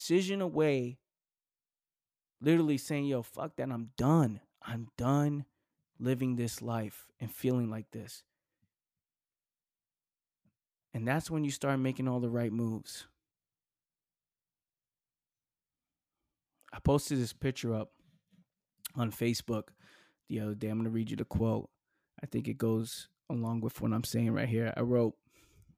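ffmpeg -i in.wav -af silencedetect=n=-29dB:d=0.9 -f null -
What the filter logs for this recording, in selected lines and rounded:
silence_start: 0.85
silence_end: 2.46 | silence_duration: 1.62
silence_start: 7.74
silence_end: 10.96 | silence_duration: 3.22
silence_start: 12.74
silence_end: 16.86 | silence_duration: 4.12
silence_start: 17.82
silence_end: 18.86 | silence_duration: 1.03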